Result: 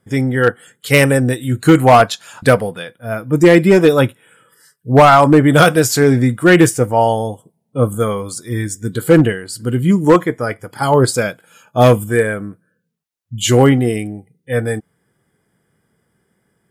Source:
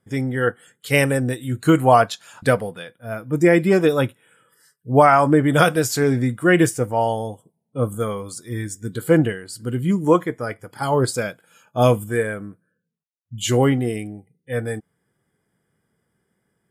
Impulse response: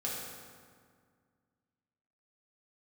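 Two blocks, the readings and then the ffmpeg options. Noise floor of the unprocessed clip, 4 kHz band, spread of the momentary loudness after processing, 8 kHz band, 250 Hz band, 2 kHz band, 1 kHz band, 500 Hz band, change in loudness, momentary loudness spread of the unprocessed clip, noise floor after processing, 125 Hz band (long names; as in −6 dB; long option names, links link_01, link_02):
−75 dBFS, +7.5 dB, 15 LU, +7.0 dB, +6.5 dB, +6.0 dB, +5.5 dB, +6.0 dB, +6.0 dB, 15 LU, −68 dBFS, +7.0 dB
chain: -af "volume=9.5dB,asoftclip=hard,volume=-9.5dB,volume=7dB"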